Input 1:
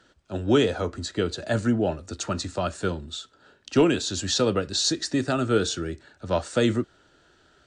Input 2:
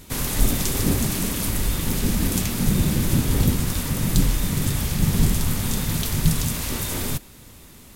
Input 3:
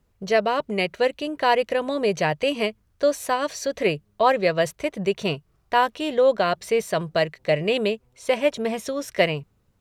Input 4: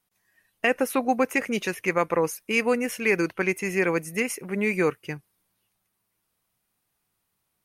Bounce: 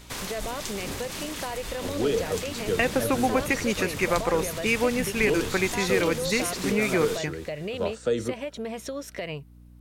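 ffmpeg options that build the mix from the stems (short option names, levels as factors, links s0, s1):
-filter_complex "[0:a]equalizer=f=470:w=6.4:g=12.5,adelay=1500,volume=0.422[s0];[1:a]acrossover=split=440 7700:gain=0.251 1 0.251[s1][s2][s3];[s1][s2][s3]amix=inputs=3:normalize=0,volume=1.12[s4];[2:a]alimiter=limit=0.133:level=0:latency=1:release=114,aeval=exprs='val(0)+0.00447*(sin(2*PI*60*n/s)+sin(2*PI*2*60*n/s)/2+sin(2*PI*3*60*n/s)/3+sin(2*PI*4*60*n/s)/4+sin(2*PI*5*60*n/s)/5)':c=same,volume=0.891,asplit=2[s5][s6];[3:a]adelay=2150,volume=1.26[s7];[s6]apad=whole_len=350621[s8];[s4][s8]sidechaincompress=threshold=0.0501:ratio=8:attack=31:release=136[s9];[s9][s5]amix=inputs=2:normalize=0,acompressor=threshold=0.02:ratio=2,volume=1[s10];[s0][s7]amix=inputs=2:normalize=0,acompressor=threshold=0.0794:ratio=2,volume=1[s11];[s10][s11]amix=inputs=2:normalize=0"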